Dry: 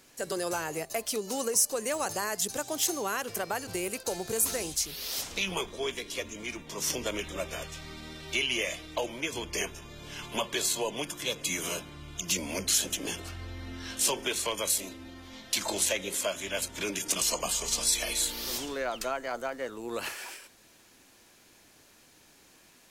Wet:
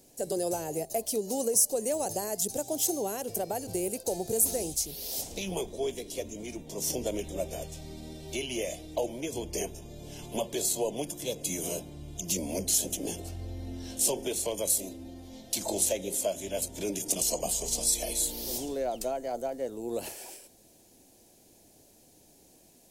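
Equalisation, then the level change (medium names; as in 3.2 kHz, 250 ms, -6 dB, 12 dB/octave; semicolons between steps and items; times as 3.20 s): FFT filter 740 Hz 0 dB, 1.2 kHz -20 dB, 9.6 kHz 0 dB; +2.5 dB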